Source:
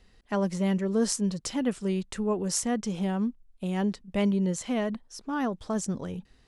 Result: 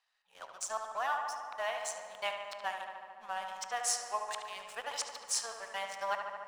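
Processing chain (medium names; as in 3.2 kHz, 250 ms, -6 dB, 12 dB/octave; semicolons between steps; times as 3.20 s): reverse the whole clip; inverse Chebyshev high-pass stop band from 370 Hz, stop band 40 dB; treble shelf 5.2 kHz -5.5 dB; band-stop 2 kHz, Q 23; waveshaping leveller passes 2; transient shaper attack +2 dB, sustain -6 dB; filtered feedback delay 73 ms, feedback 82%, low-pass 3.2 kHz, level -6 dB; reverberation RT60 2.3 s, pre-delay 10 ms, DRR 12.5 dB; trim -7 dB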